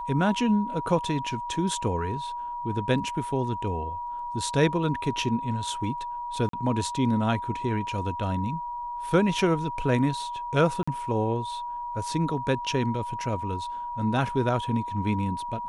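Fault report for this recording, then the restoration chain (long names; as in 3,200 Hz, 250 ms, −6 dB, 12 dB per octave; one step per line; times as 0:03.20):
whistle 960 Hz −31 dBFS
0:06.49–0:06.53: drop-out 43 ms
0:10.83–0:10.88: drop-out 45 ms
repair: notch filter 960 Hz, Q 30
repair the gap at 0:06.49, 43 ms
repair the gap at 0:10.83, 45 ms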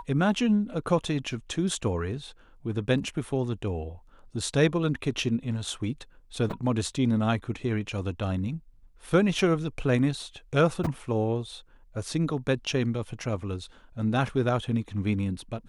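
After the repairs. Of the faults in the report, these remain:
none of them is left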